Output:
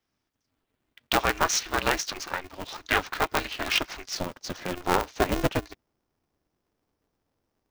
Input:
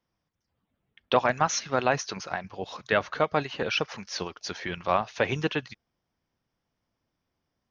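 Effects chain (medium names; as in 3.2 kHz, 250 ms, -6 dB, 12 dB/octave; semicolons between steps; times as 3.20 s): peaking EQ 360 Hz -9.5 dB 2.5 oct, from 4.15 s 2.5 kHz; polarity switched at an audio rate 180 Hz; trim +4 dB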